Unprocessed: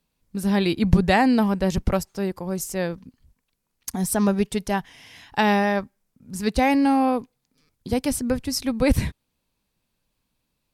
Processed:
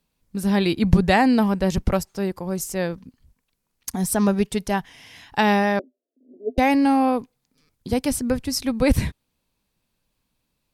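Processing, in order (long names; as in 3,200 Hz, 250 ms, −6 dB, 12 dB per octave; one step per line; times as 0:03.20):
0:05.79–0:06.58: Chebyshev band-pass filter 250–690 Hz, order 5
level +1 dB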